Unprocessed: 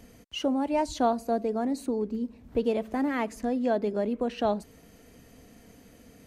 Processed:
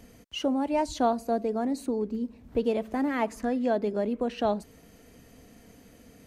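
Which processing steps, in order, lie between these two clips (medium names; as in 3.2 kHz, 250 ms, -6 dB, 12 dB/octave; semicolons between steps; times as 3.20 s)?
3.21–3.63 s: peaking EQ 720 Hz -> 2.3 kHz +7 dB 0.85 oct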